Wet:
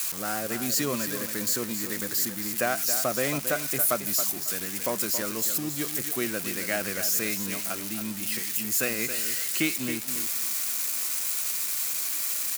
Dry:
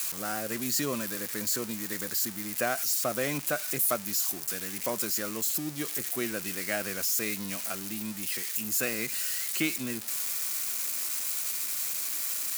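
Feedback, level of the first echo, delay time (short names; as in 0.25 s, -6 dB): 21%, -9.5 dB, 0.274 s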